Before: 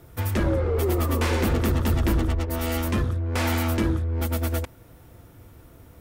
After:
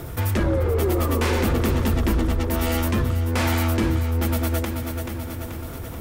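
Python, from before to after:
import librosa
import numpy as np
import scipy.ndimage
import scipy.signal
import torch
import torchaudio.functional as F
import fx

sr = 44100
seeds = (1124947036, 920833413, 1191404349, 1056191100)

y = fx.echo_feedback(x, sr, ms=433, feedback_pct=45, wet_db=-11.0)
y = fx.env_flatten(y, sr, amount_pct=50)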